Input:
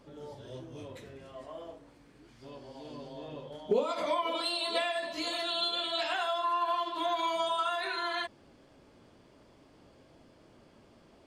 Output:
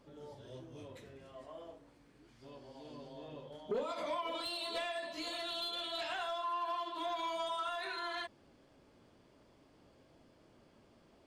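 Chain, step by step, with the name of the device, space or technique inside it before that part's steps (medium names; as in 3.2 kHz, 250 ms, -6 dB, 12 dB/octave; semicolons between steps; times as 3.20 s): saturation between pre-emphasis and de-emphasis (treble shelf 3.6 kHz +9 dB; saturation -24 dBFS, distortion -17 dB; treble shelf 3.6 kHz -9 dB); trim -5.5 dB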